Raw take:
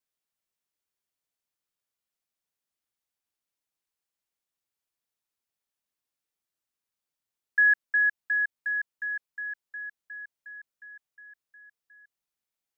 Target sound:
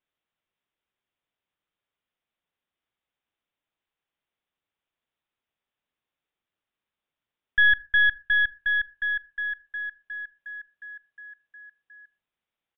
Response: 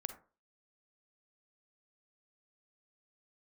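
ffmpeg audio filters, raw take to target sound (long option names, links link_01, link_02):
-filter_complex "[0:a]aeval=exprs='(tanh(12.6*val(0)+0.45)-tanh(0.45))/12.6':channel_layout=same,aresample=8000,aresample=44100,asplit=2[link_01][link_02];[1:a]atrim=start_sample=2205[link_03];[link_02][link_03]afir=irnorm=-1:irlink=0,volume=-8dB[link_04];[link_01][link_04]amix=inputs=2:normalize=0,volume=5dB"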